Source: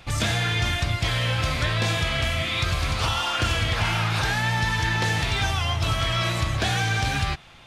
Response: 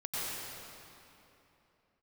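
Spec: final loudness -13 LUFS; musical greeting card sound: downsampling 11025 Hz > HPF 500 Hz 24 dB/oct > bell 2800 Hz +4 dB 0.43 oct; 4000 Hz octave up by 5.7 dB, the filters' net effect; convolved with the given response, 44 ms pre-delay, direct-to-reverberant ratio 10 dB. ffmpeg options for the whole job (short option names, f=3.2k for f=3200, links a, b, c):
-filter_complex "[0:a]equalizer=f=4k:t=o:g=5,asplit=2[a][b];[1:a]atrim=start_sample=2205,adelay=44[c];[b][c]afir=irnorm=-1:irlink=0,volume=-15.5dB[d];[a][d]amix=inputs=2:normalize=0,aresample=11025,aresample=44100,highpass=f=500:w=0.5412,highpass=f=500:w=1.3066,equalizer=f=2.8k:t=o:w=0.43:g=4,volume=8.5dB"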